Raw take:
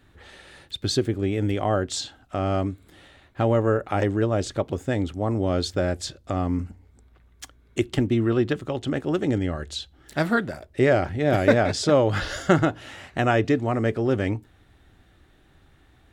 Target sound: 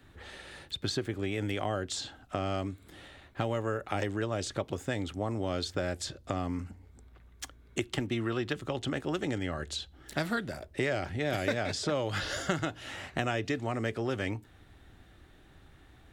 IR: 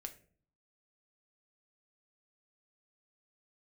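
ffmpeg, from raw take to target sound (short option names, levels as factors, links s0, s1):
-filter_complex "[0:a]acrossover=split=80|720|2300[s0][s1][s2][s3];[s0]acompressor=threshold=0.00282:ratio=4[s4];[s1]acompressor=threshold=0.0224:ratio=4[s5];[s2]acompressor=threshold=0.0126:ratio=4[s6];[s3]acompressor=threshold=0.0158:ratio=4[s7];[s4][s5][s6][s7]amix=inputs=4:normalize=0"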